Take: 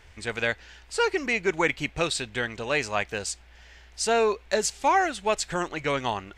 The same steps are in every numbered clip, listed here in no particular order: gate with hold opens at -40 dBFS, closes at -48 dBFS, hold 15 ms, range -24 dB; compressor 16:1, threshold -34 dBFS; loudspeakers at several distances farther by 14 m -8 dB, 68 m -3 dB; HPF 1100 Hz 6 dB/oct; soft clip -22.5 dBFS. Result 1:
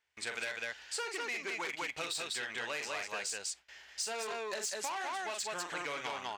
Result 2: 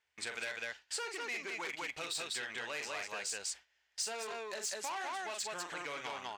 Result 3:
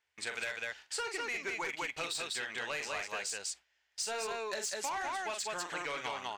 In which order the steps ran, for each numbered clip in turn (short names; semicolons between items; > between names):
gate with hold > loudspeakers at several distances > soft clip > HPF > compressor; loudspeakers at several distances > soft clip > compressor > HPF > gate with hold; HPF > gate with hold > loudspeakers at several distances > soft clip > compressor